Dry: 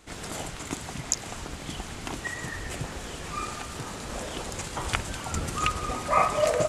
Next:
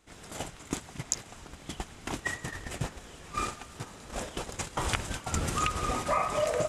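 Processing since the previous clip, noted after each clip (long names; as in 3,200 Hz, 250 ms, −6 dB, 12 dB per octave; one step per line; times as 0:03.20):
notch filter 4,400 Hz, Q 24
noise gate −33 dBFS, range −13 dB
downward compressor 5 to 1, threshold −28 dBFS, peak gain reduction 10.5 dB
level +2.5 dB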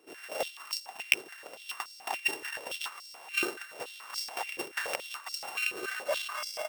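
samples sorted by size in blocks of 16 samples
speech leveller within 5 dB 0.5 s
high-pass on a step sequencer 7 Hz 380–4,900 Hz
level −4 dB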